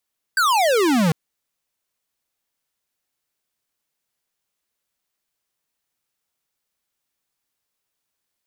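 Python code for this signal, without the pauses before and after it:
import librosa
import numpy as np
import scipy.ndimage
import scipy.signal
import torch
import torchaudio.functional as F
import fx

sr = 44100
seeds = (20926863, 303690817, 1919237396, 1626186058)

y = fx.laser_zap(sr, level_db=-17, start_hz=1600.0, end_hz=150.0, length_s=0.75, wave='square')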